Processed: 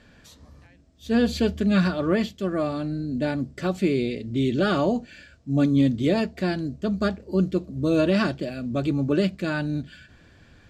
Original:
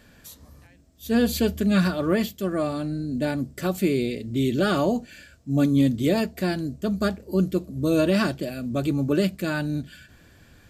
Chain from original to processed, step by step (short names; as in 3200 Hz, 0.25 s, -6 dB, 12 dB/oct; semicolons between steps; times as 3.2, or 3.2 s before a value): LPF 5400 Hz 12 dB/oct